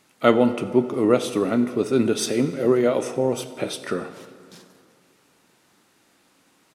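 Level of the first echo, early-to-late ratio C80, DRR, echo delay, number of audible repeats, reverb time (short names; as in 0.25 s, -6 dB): -22.5 dB, 13.0 dB, 11.0 dB, 95 ms, 1, 2.3 s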